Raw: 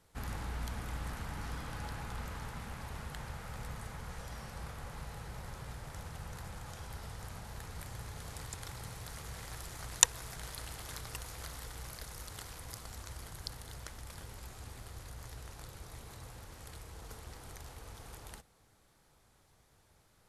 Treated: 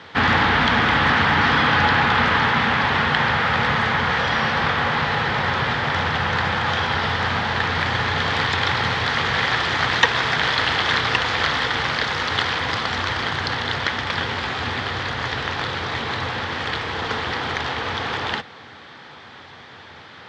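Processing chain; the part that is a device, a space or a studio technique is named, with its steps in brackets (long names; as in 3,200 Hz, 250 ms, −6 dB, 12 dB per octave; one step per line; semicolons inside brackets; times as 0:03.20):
overdrive pedal into a guitar cabinet (mid-hump overdrive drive 34 dB, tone 2,800 Hz, clips at −4 dBFS; loudspeaker in its box 80–4,600 Hz, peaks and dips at 88 Hz +9 dB, 140 Hz +4 dB, 240 Hz +6 dB, 620 Hz −4 dB, 1,800 Hz +5 dB, 3,300 Hz +6 dB)
level +3.5 dB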